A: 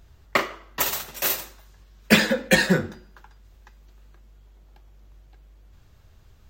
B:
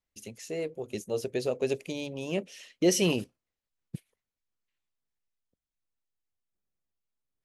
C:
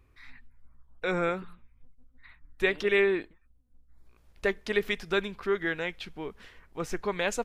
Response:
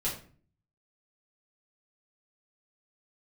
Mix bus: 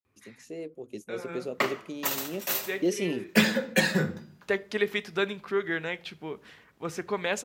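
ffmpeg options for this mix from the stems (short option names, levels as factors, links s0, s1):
-filter_complex "[0:a]adelay=1250,volume=0.251,asplit=2[s0][s1];[s1]volume=0.224[s2];[1:a]equalizer=f=300:t=o:w=1:g=8.5,volume=0.2,asplit=2[s3][s4];[2:a]adelay=50,volume=0.531,asplit=2[s5][s6];[s6]volume=0.1[s7];[s4]apad=whole_len=330342[s8];[s5][s8]sidechaincompress=threshold=0.002:ratio=8:attack=29:release=506[s9];[3:a]atrim=start_sample=2205[s10];[s2][s7]amix=inputs=2:normalize=0[s11];[s11][s10]afir=irnorm=-1:irlink=0[s12];[s0][s3][s9][s12]amix=inputs=4:normalize=0,highpass=f=100:w=0.5412,highpass=f=100:w=1.3066,dynaudnorm=f=130:g=3:m=1.78"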